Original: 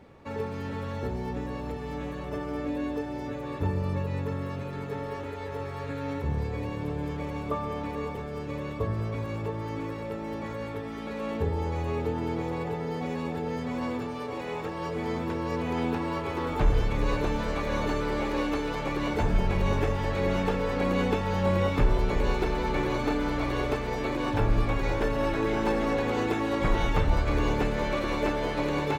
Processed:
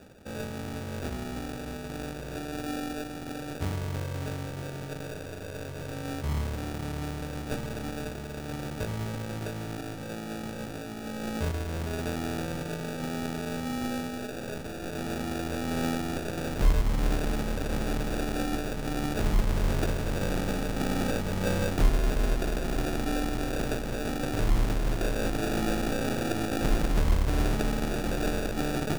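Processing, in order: tracing distortion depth 0.45 ms; dynamic EQ 490 Hz, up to -6 dB, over -42 dBFS, Q 1.8; reverse; upward compressor, threshold -42 dBFS; reverse; fifteen-band EQ 100 Hz -6 dB, 1000 Hz -11 dB, 4000 Hz +6 dB; reverb, pre-delay 3 ms, DRR 6.5 dB; sample-and-hold 42×

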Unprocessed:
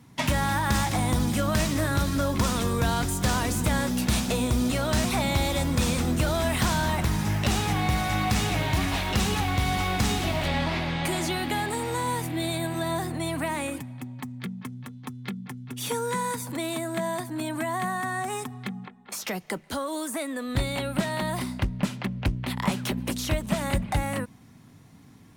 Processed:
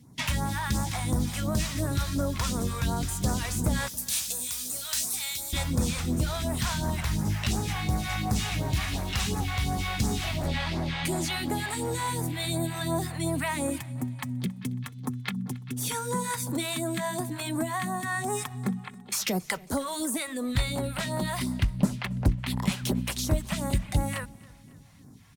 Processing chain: 3.88–5.53 pre-emphasis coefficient 0.97; vocal rider within 5 dB 0.5 s; phaser stages 2, 2.8 Hz, lowest notch 260–2900 Hz; feedback echo 0.274 s, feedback 50%, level -23 dB

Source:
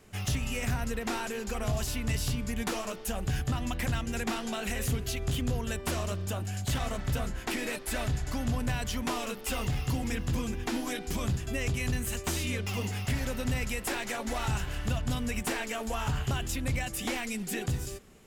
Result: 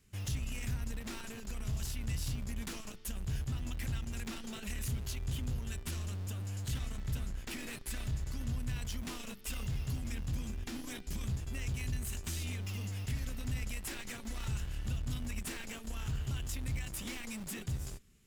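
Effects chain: passive tone stack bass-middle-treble 6-0-2; in parallel at -9 dB: Schmitt trigger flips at -52 dBFS; on the sum: gain +6.5 dB

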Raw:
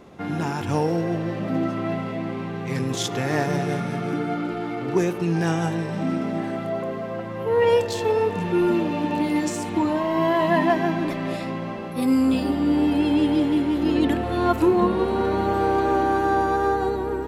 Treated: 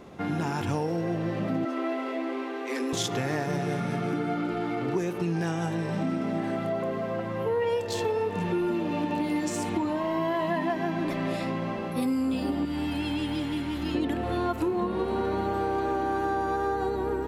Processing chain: 1.65–2.93 Chebyshev high-pass 250 Hz, order 10; 12.65–13.95 bell 430 Hz -12.5 dB 1.9 oct; compressor 5:1, threshold -25 dBFS, peak gain reduction 10.5 dB

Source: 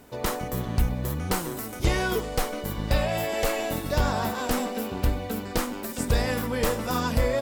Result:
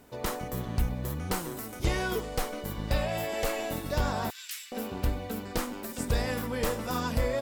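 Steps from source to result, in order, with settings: 4.3–4.72 inverse Chebyshev high-pass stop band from 630 Hz, stop band 60 dB; gain -4.5 dB

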